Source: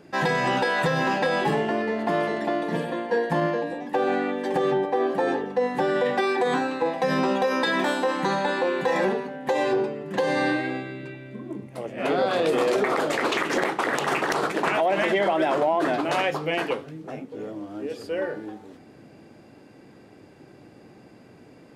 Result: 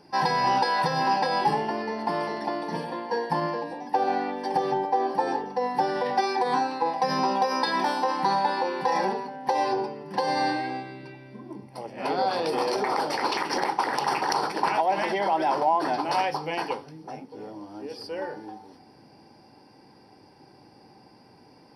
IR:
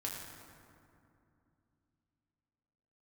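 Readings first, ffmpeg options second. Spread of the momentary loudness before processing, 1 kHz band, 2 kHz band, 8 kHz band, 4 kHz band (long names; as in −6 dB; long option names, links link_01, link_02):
12 LU, +3.0 dB, −5.5 dB, −1.5 dB, −0.5 dB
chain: -af "superequalizer=9b=3.16:14b=3.98:15b=0.316:16b=1.58,volume=-5.5dB"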